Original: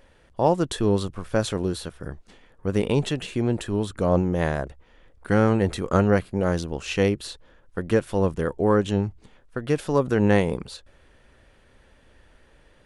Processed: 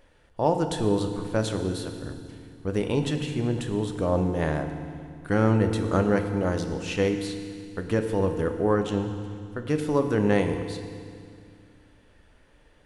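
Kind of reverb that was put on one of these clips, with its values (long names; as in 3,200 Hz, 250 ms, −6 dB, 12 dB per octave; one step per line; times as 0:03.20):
feedback delay network reverb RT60 2.2 s, low-frequency decay 1.35×, high-frequency decay 1×, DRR 6 dB
level −3.5 dB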